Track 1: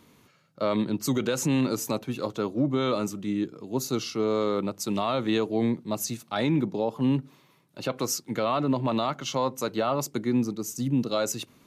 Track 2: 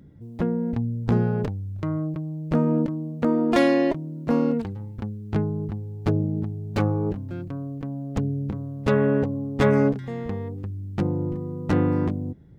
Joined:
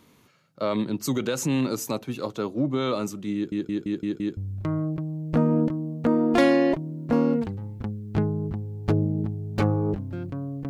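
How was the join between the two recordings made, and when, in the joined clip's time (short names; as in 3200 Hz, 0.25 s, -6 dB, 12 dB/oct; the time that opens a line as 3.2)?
track 1
3.35 stutter in place 0.17 s, 6 plays
4.37 switch to track 2 from 1.55 s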